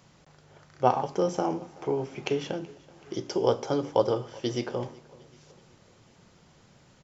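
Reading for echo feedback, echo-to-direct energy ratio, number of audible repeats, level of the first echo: 53%, -21.5 dB, 3, -23.0 dB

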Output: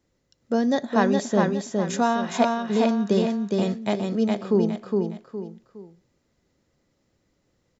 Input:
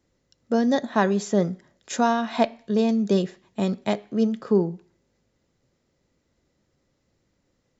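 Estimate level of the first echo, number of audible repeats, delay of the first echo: -3.0 dB, 3, 0.413 s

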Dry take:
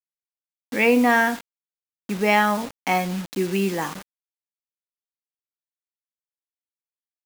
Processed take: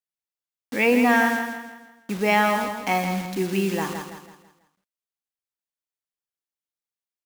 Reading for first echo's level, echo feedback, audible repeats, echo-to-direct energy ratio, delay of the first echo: -7.0 dB, 40%, 4, -6.0 dB, 0.164 s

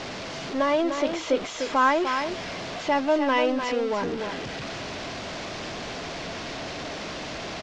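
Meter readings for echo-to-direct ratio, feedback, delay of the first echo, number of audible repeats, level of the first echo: -7.0 dB, no steady repeat, 0.299 s, 1, -7.0 dB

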